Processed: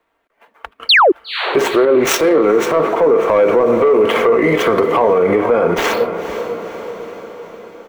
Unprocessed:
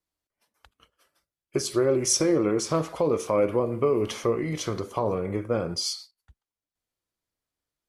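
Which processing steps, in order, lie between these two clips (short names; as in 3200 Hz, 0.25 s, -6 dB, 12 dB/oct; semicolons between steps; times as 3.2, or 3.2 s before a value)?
median filter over 9 samples; high shelf 7100 Hz +11.5 dB; comb 4.4 ms, depth 33%; in parallel at +0.5 dB: compressor, threshold -30 dBFS, peak gain reduction 12.5 dB; on the sum: three-band isolator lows -17 dB, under 310 Hz, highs -21 dB, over 2800 Hz; 0.89–1.12 painted sound fall 310–4800 Hz -25 dBFS; soft clip -15 dBFS, distortion -19 dB; on a send: diffused feedback echo 0.479 s, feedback 58%, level -14 dB; on the sum: maximiser +25.5 dB; 1.85–3.3 three-band expander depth 70%; gain -4.5 dB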